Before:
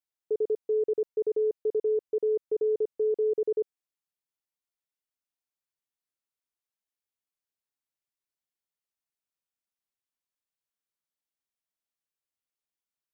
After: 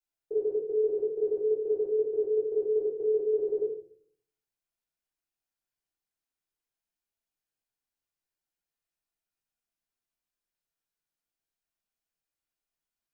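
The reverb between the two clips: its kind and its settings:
rectangular room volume 64 cubic metres, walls mixed, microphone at 3.7 metres
level −13.5 dB

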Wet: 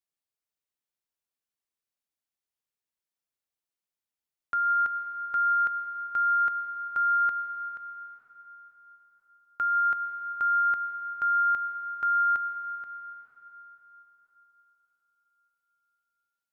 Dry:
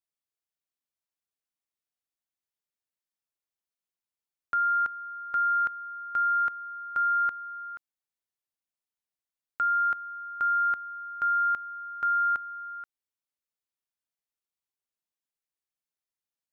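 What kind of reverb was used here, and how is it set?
dense smooth reverb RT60 4.4 s, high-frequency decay 0.85×, pre-delay 90 ms, DRR 7.5 dB
level −1 dB

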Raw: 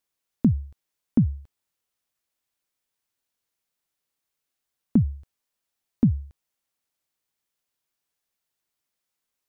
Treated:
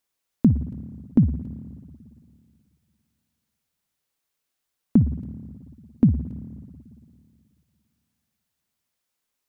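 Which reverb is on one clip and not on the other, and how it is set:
spring reverb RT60 2.4 s, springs 55/59 ms, chirp 35 ms, DRR 12 dB
level +2.5 dB

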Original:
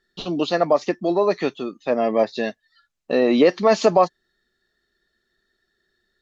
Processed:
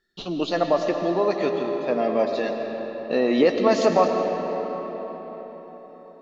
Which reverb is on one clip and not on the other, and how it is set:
comb and all-pass reverb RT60 5 s, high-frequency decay 0.6×, pre-delay 65 ms, DRR 3.5 dB
level −3.5 dB

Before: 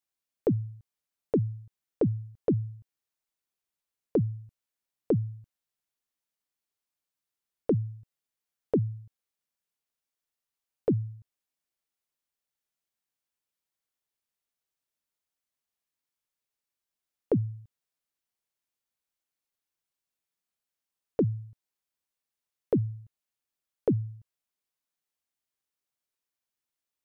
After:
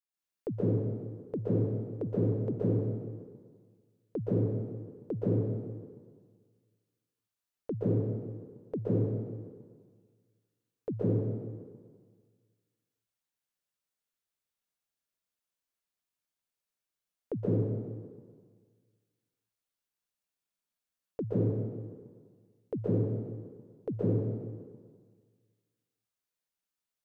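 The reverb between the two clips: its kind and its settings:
dense smooth reverb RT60 1.7 s, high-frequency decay 0.8×, pre-delay 110 ms, DRR −8.5 dB
level −10.5 dB

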